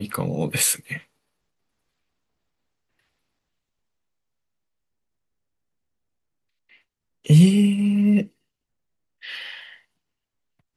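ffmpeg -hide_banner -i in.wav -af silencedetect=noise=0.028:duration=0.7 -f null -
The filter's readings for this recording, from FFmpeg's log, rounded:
silence_start: 0.98
silence_end: 7.26 | silence_duration: 6.29
silence_start: 8.25
silence_end: 9.23 | silence_duration: 0.98
silence_start: 9.60
silence_end: 10.76 | silence_duration: 1.16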